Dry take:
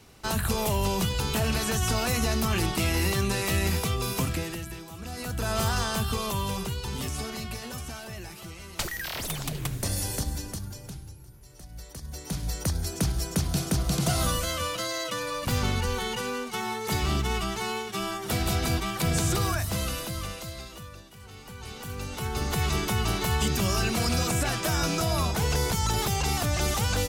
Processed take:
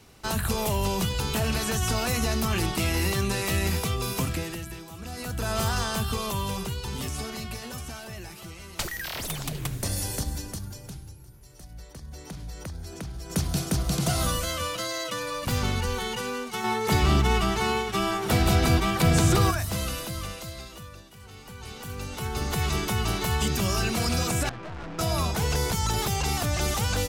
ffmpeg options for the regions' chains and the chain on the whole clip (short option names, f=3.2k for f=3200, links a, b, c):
-filter_complex "[0:a]asettb=1/sr,asplit=3[a][b][c];[a]atrim=end=11.734[d];[b]atrim=start=11.73:end=13.3,asetpts=PTS-STARTPTS,afade=t=in:d=0.004:c=qsin,afade=t=out:st=1.566:d=0.004:c=qsin,highshelf=f=5.5k:g=-8.5,acompressor=threshold=-37dB:ratio=2.5:attack=3.2:release=140:knee=1:detection=peak[e];[c]atrim=start=13.296[f];[d][e]acrossfade=d=0.004:c1=hsin:c2=qsin[g];[g][f]acrossfade=d=0.004:c1=qsin:c2=hsin,asettb=1/sr,asplit=3[h][i][j];[h]atrim=end=16.644[k];[i]atrim=start=16.64:end=19.51,asetpts=PTS-STARTPTS,afade=t=in:d=0.004:c=qsin,afade=t=out:st=2.866:d=0.004:c=qsin,highshelf=f=3.6k:g=-6,acontrast=51,aecho=1:1:538:0.15,atrim=end_sample=126567[l];[j]atrim=start=19.506[m];[k][l]acrossfade=d=0.004:c1=hsin:c2=qsin[n];[n][m]acrossfade=d=0.004:c1=qsin:c2=hsin,asettb=1/sr,asplit=3[o][p][q];[o]atrim=end=24.494[r];[p]atrim=start=24.49:end=24.99,asetpts=PTS-STARTPTS,afade=t=in:d=0.004:c=qsin,afade=t=out:st=0.496:d=0.004:c=qsin,lowpass=1.5k,aeval=exprs='(tanh(63.1*val(0)+0.6)-tanh(0.6))/63.1':c=same[s];[q]atrim=start=24.986[t];[r][s]acrossfade=d=0.004:c1=hsin:c2=qsin[u];[u][t]acrossfade=d=0.004:c1=qsin:c2=hsin"